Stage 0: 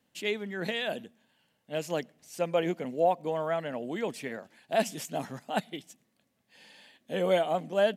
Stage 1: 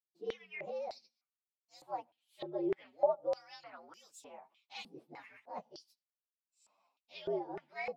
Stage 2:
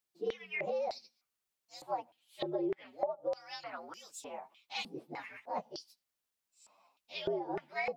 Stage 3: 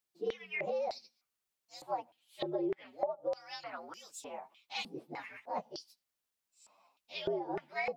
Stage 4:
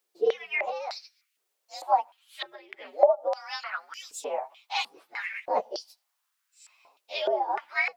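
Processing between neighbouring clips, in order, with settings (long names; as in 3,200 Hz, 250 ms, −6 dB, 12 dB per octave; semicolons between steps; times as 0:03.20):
partials spread apart or drawn together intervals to 118%; downward expander −56 dBFS; band-pass on a step sequencer 3.3 Hz 380–7,400 Hz; level +2 dB
downward compressor 10 to 1, threshold −39 dBFS, peak gain reduction 16 dB; level +8 dB
no processing that can be heard
auto-filter high-pass saw up 0.73 Hz 370–2,400 Hz; level +8 dB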